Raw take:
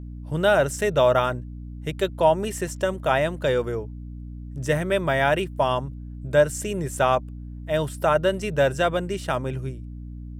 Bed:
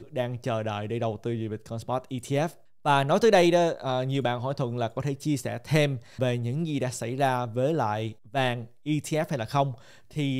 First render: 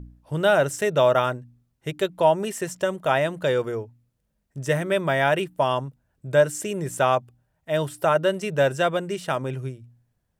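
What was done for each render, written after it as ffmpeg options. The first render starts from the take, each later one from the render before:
-af "bandreject=f=60:t=h:w=4,bandreject=f=120:t=h:w=4,bandreject=f=180:t=h:w=4,bandreject=f=240:t=h:w=4,bandreject=f=300:t=h:w=4"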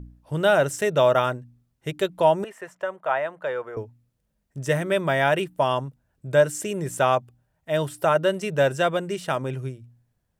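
-filter_complex "[0:a]asettb=1/sr,asplit=3[a][b][c];[a]atrim=end=2.444[d];[b]atrim=start=2.44:end=3.77,asetpts=PTS-STARTPTS,afade=t=in:d=0.004:c=qsin,afade=t=out:st=1.326:d=0.004:c=qsin,acrossover=split=540 2100:gain=0.126 1 0.112[e][f][g];[e][f][g]amix=inputs=3:normalize=0[h];[c]atrim=start=3.766[i];[d][h]acrossfade=d=0.004:c1=hsin:c2=qsin[j];[j][i]acrossfade=d=0.004:c1=qsin:c2=hsin"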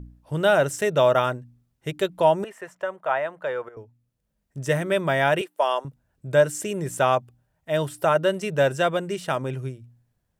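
-filter_complex "[0:a]asettb=1/sr,asplit=3[a][b][c];[a]atrim=end=5.414[d];[b]atrim=start=5.41:end=5.85,asetpts=PTS-STARTPTS,afade=t=in:d=0.004:c=qsin,afade=t=out:st=0.436:d=0.004:c=qsin,highpass=f=400:w=0.5412,highpass=f=400:w=1.3066[e];[c]atrim=start=5.846[f];[d][e]acrossfade=d=0.004:c1=hsin:c2=qsin[g];[g][f]acrossfade=d=0.004:c1=qsin:c2=hsin,asplit=2[h][i];[h]atrim=end=3.69,asetpts=PTS-STARTPTS,afade=t=out:st=3.686:d=0.004:c=hsin:silence=0.251189[j];[i]atrim=start=3.69,asetpts=PTS-STARTPTS,afade=t=in:d=0.9:silence=0.251189[k];[j][k]concat=n=2:v=0:a=1"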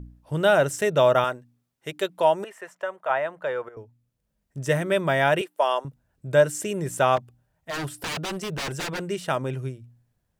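-filter_complex "[0:a]asettb=1/sr,asplit=3[a][b][c];[a]atrim=end=1.244[d];[b]atrim=start=1.24:end=3.1,asetpts=PTS-STARTPTS,afade=t=in:d=0.004:c=qsin,afade=t=out:st=1.856:d=0.004:c=qsin,highpass=f=410:p=1[e];[c]atrim=start=3.096[f];[d][e]acrossfade=d=0.004:c1=hsin:c2=qsin[g];[g][f]acrossfade=d=0.004:c1=qsin:c2=hsin,asplit=3[h][i][j];[h]afade=t=out:st=7.16:d=0.02[k];[i]aeval=exprs='0.0562*(abs(mod(val(0)/0.0562+3,4)-2)-1)':c=same,afade=t=in:st=7.16:d=0.02,afade=t=out:st=9.03:d=0.02[l];[j]afade=t=in:st=9.03:d=0.02[m];[k][l][m]amix=inputs=3:normalize=0"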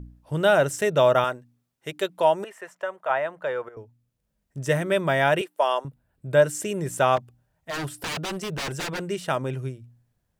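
-filter_complex "[0:a]asettb=1/sr,asplit=3[a][b][c];[a]atrim=end=5.874[d];[b]atrim=start=5.87:end=6.42,asetpts=PTS-STARTPTS,afade=t=in:d=0.004:c=qsin,afade=t=out:st=0.546:d=0.004:c=qsin,equalizer=f=6.2k:w=2.3:g=-7.5[e];[c]atrim=start=6.416[f];[d][e]acrossfade=d=0.004:c1=hsin:c2=qsin[g];[g][f]acrossfade=d=0.004:c1=qsin:c2=hsin"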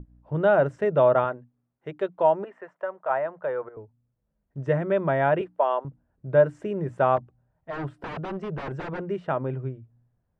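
-af "lowpass=1.3k,bandreject=f=60:t=h:w=6,bandreject=f=120:t=h:w=6,bandreject=f=180:t=h:w=6,bandreject=f=240:t=h:w=6,bandreject=f=300:t=h:w=6"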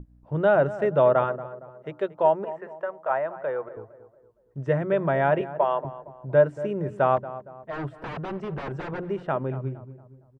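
-filter_complex "[0:a]asplit=2[a][b];[b]adelay=231,lowpass=f=1.4k:p=1,volume=-14dB,asplit=2[c][d];[d]adelay=231,lowpass=f=1.4k:p=1,volume=0.45,asplit=2[e][f];[f]adelay=231,lowpass=f=1.4k:p=1,volume=0.45,asplit=2[g][h];[h]adelay=231,lowpass=f=1.4k:p=1,volume=0.45[i];[a][c][e][g][i]amix=inputs=5:normalize=0"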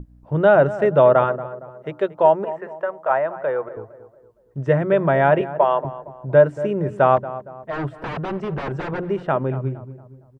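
-af "volume=6dB,alimiter=limit=-3dB:level=0:latency=1"

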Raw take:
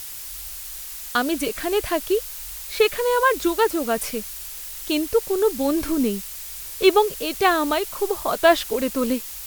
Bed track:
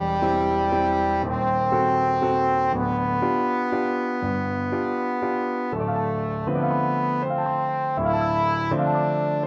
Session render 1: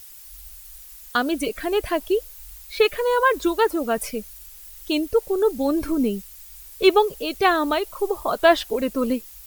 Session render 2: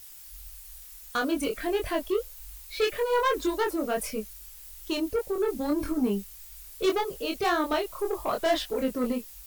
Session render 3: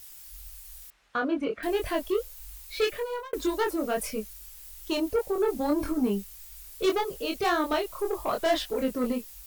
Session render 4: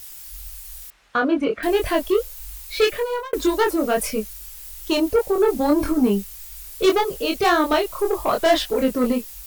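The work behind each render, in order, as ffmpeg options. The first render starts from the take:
-af "afftdn=nr=12:nf=-35"
-af "asoftclip=type=tanh:threshold=-17dB,flanger=delay=22.5:depth=2.4:speed=1.7"
-filter_complex "[0:a]asettb=1/sr,asplit=3[a][b][c];[a]atrim=end=0.904[d];[b]atrim=start=0.9:end=1.63,asetpts=PTS-STARTPTS,afade=t=in:d=0.004:c=qsin,afade=t=out:st=0.726:d=0.004:c=qsin,highpass=100,lowpass=2.2k[e];[c]atrim=start=1.626[f];[d][e]acrossfade=d=0.004:c1=hsin:c2=qsin[g];[g][f]acrossfade=d=0.004:c1=qsin:c2=hsin,asettb=1/sr,asplit=3[h][i][j];[h]atrim=end=4.914[k];[i]atrim=start=4.91:end=5.91,asetpts=PTS-STARTPTS,afade=t=in:d=0.004:c=qsin,afade=t=out:st=0.996:d=0.004:c=qsin,equalizer=f=770:w=1.5:g=6[l];[j]atrim=start=5.906[m];[k][l]acrossfade=d=0.004:c1=hsin:c2=qsin[n];[n][m]acrossfade=d=0.004:c1=qsin:c2=hsin,asplit=2[o][p];[o]atrim=end=3.33,asetpts=PTS-STARTPTS,afade=t=out:st=2.83:d=0.5[q];[p]atrim=start=3.33,asetpts=PTS-STARTPTS,afade=t=in:d=0.004:c=hsin[r];[q][r]concat=n=2:v=0:a=1"
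-af "volume=8dB"

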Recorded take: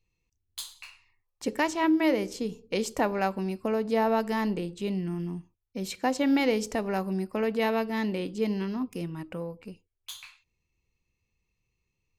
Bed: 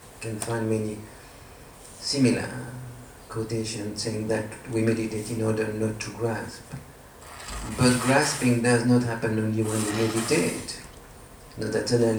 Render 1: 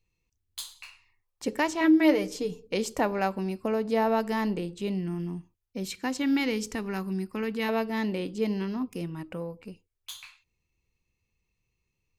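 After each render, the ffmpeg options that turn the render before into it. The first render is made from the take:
-filter_complex "[0:a]asettb=1/sr,asplit=3[a][b][c];[a]atrim=end=1.804[d];[b]atrim=start=1.8:end=2.67,asetpts=PTS-STARTPTS,afade=t=in:d=0.004:c=qsin,afade=t=out:st=0.866:d=0.004:c=qsin,aecho=1:1:6.7:0.65,atrim=end_sample=38367[e];[c]atrim=start=2.666[f];[d][e]acrossfade=d=0.004:c1=hsin:c2=qsin[g];[g][f]acrossfade=d=0.004:c1=qsin:c2=hsin,asettb=1/sr,asplit=3[h][i][j];[h]atrim=end=5.854[k];[i]atrim=start=5.85:end=7.69,asetpts=PTS-STARTPTS,afade=t=in:d=0.004:c=qsin,afade=t=out:st=1.836:d=0.004:c=qsin,equalizer=f=630:t=o:w=0.71:g=-14[l];[j]atrim=start=7.686[m];[k][l]acrossfade=d=0.004:c1=hsin:c2=qsin[n];[n][m]acrossfade=d=0.004:c1=qsin:c2=hsin"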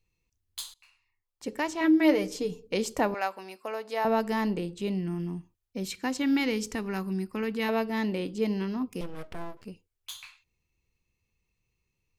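-filter_complex "[0:a]asettb=1/sr,asplit=3[a][b][c];[a]atrim=end=3.144[d];[b]atrim=start=3.14:end=4.05,asetpts=PTS-STARTPTS,afade=t=in:d=0.004:c=qsin,afade=t=out:st=0.906:d=0.004:c=qsin,highpass=670[e];[c]atrim=start=4.046[f];[d][e]acrossfade=d=0.004:c1=hsin:c2=qsin[g];[g][f]acrossfade=d=0.004:c1=qsin:c2=hsin,asettb=1/sr,asplit=3[h][i][j];[h]atrim=end=9.014[k];[i]atrim=start=9.01:end=9.65,asetpts=PTS-STARTPTS,afade=t=in:d=0.004:c=qsin,afade=t=out:st=0.636:d=0.004:c=qsin,aeval=exprs='abs(val(0))':c=same[l];[j]atrim=start=9.646[m];[k][l]acrossfade=d=0.004:c1=hsin:c2=qsin[n];[n][m]acrossfade=d=0.004:c1=qsin:c2=hsin,asplit=2[o][p];[o]atrim=end=0.74,asetpts=PTS-STARTPTS,afade=t=out:st=0.736:d=0.004:c=hsin:silence=0.125893[q];[p]atrim=start=0.74,asetpts=PTS-STARTPTS,afade=t=in:d=1.46:silence=0.125893[r];[q][r]concat=n=2:v=0:a=1"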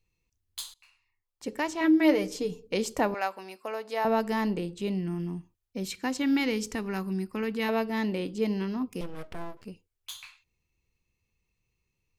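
-af anull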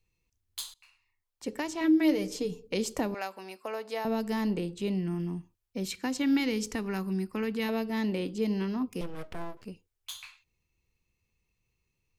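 -filter_complex "[0:a]acrossover=split=390|3000[a][b][c];[b]acompressor=threshold=-34dB:ratio=6[d];[a][d][c]amix=inputs=3:normalize=0"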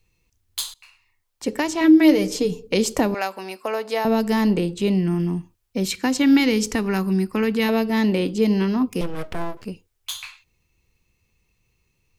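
-af "volume=10.5dB"

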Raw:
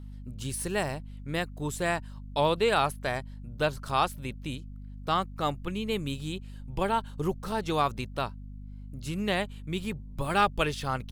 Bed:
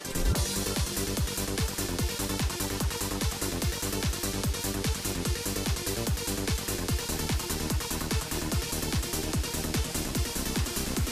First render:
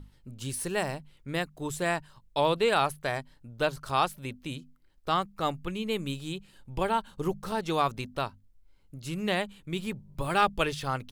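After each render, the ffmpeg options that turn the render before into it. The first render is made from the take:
-af "bandreject=f=50:t=h:w=6,bandreject=f=100:t=h:w=6,bandreject=f=150:t=h:w=6,bandreject=f=200:t=h:w=6,bandreject=f=250:t=h:w=6"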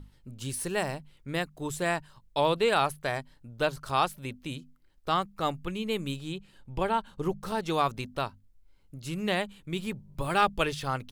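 -filter_complex "[0:a]asettb=1/sr,asplit=3[a][b][c];[a]atrim=end=6.164[d];[b]atrim=start=6.16:end=7.42,asetpts=PTS-STARTPTS,afade=t=in:d=0.004:c=qsin,afade=t=out:st=1.256:d=0.004:c=qsin,highshelf=f=5.6k:g=-6.5[e];[c]atrim=start=7.416[f];[d][e]acrossfade=d=0.004:c1=hsin:c2=qsin[g];[g][f]acrossfade=d=0.004:c1=qsin:c2=hsin"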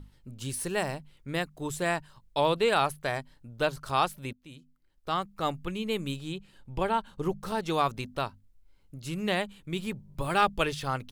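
-filter_complex "[0:a]asplit=2[a][b];[a]atrim=end=4.33,asetpts=PTS-STARTPTS,afade=t=out:st=4.326:d=0.004:c=hsin:silence=0.141254[c];[b]atrim=start=4.33,asetpts=PTS-STARTPTS,afade=t=in:d=1.2:silence=0.141254[d];[c][d]concat=n=2:v=0:a=1"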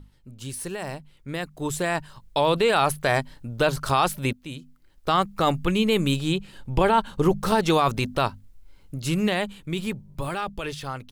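-af "alimiter=limit=-22dB:level=0:latency=1:release=15,dynaudnorm=f=230:g=17:m=12dB"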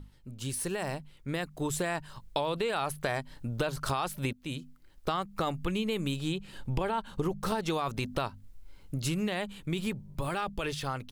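-af "acompressor=threshold=-28dB:ratio=6"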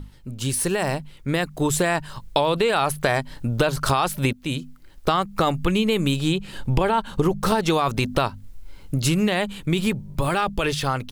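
-af "volume=10.5dB"

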